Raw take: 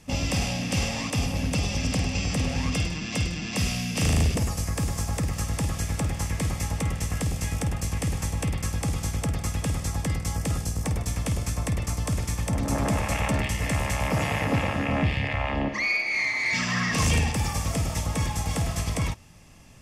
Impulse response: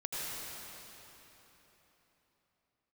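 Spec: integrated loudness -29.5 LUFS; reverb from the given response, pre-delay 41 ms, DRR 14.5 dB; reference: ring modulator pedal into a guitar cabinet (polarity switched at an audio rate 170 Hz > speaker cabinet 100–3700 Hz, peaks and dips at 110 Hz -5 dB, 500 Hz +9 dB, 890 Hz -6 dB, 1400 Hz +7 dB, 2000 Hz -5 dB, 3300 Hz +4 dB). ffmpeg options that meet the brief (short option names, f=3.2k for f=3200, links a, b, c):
-filter_complex "[0:a]asplit=2[a][b];[1:a]atrim=start_sample=2205,adelay=41[c];[b][c]afir=irnorm=-1:irlink=0,volume=-19dB[d];[a][d]amix=inputs=2:normalize=0,aeval=exprs='val(0)*sgn(sin(2*PI*170*n/s))':c=same,highpass=100,equalizer=f=110:t=q:w=4:g=-5,equalizer=f=500:t=q:w=4:g=9,equalizer=f=890:t=q:w=4:g=-6,equalizer=f=1.4k:t=q:w=4:g=7,equalizer=f=2k:t=q:w=4:g=-5,equalizer=f=3.3k:t=q:w=4:g=4,lowpass=f=3.7k:w=0.5412,lowpass=f=3.7k:w=1.3066,volume=-3dB"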